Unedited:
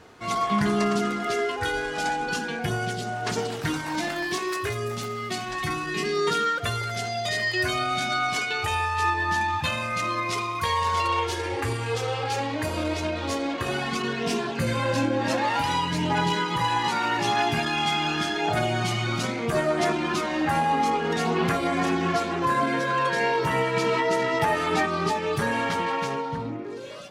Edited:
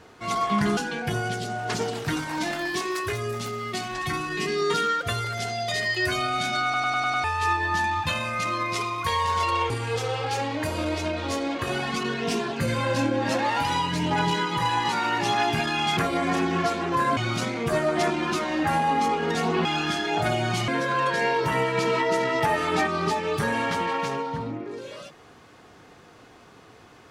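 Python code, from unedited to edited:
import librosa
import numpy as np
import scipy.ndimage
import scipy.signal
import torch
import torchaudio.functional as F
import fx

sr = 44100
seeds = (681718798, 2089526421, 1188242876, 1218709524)

y = fx.edit(x, sr, fx.cut(start_s=0.77, length_s=1.57),
    fx.stutter_over(start_s=8.21, slice_s=0.1, count=6),
    fx.cut(start_s=11.27, length_s=0.42),
    fx.swap(start_s=17.96, length_s=1.03, other_s=21.47, other_length_s=1.2), tone=tone)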